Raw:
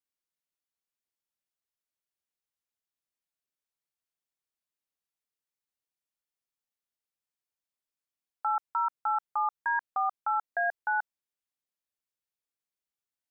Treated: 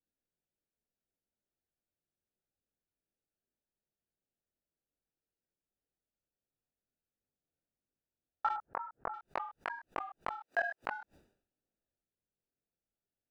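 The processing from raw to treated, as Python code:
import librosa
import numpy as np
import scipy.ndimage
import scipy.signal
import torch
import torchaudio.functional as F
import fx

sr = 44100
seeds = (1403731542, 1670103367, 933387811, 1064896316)

y = fx.wiener(x, sr, points=41)
y = fx.transient(y, sr, attack_db=-8, sustain_db=4)
y = fx.highpass(y, sr, hz=770.0, slope=6, at=(10.39, 10.83))
y = fx.gate_flip(y, sr, shuts_db=-29.0, range_db=-36)
y = fx.chorus_voices(y, sr, voices=4, hz=1.5, base_ms=22, depth_ms=3.0, mix_pct=40)
y = fx.lowpass(y, sr, hz=1600.0, slope=24, at=(8.56, 9.14))
y = fx.sustainer(y, sr, db_per_s=97.0)
y = F.gain(torch.from_numpy(y), 13.0).numpy()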